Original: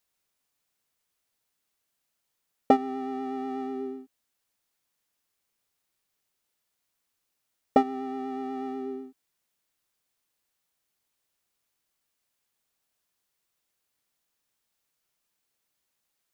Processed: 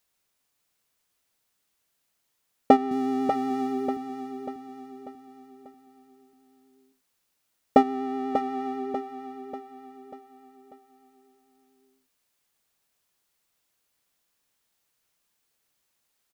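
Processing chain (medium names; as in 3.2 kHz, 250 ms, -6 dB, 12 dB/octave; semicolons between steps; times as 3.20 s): 2.91–3.97 s: tone controls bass +10 dB, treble +10 dB; feedback delay 591 ms, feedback 46%, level -8 dB; trim +3.5 dB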